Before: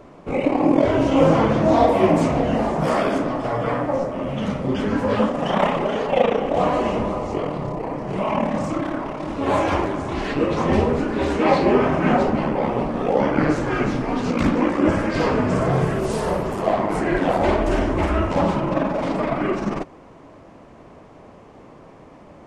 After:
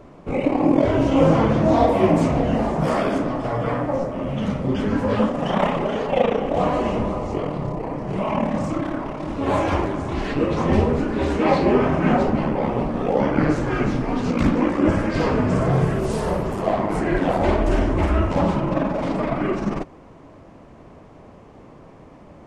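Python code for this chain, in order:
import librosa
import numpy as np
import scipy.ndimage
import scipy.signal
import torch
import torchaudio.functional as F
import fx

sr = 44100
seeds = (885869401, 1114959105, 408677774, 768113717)

y = fx.low_shelf(x, sr, hz=200.0, db=6.0)
y = y * 10.0 ** (-2.0 / 20.0)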